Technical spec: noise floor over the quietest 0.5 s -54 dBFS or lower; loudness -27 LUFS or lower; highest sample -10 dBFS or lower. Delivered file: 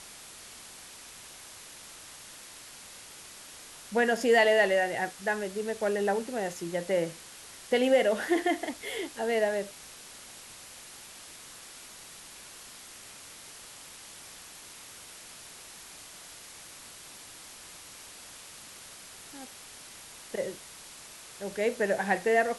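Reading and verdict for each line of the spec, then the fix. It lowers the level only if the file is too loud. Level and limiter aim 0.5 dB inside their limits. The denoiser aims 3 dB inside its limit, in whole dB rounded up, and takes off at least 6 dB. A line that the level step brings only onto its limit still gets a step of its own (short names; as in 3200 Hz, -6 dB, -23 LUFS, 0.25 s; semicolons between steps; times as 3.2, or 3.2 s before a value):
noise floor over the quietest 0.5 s -48 dBFS: fail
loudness -28.5 LUFS: OK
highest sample -12.0 dBFS: OK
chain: denoiser 9 dB, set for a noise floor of -48 dBFS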